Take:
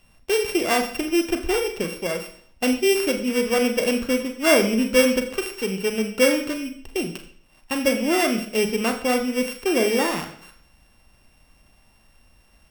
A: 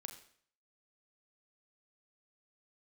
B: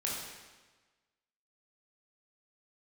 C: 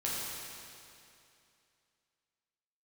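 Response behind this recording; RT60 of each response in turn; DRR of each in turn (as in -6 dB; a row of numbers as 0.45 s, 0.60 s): A; 0.55 s, 1.3 s, 2.6 s; 5.5 dB, -4.5 dB, -6.5 dB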